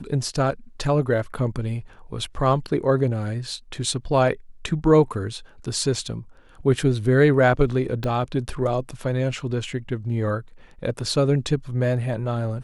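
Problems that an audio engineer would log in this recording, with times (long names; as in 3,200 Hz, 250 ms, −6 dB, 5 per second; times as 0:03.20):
0:08.04: click −16 dBFS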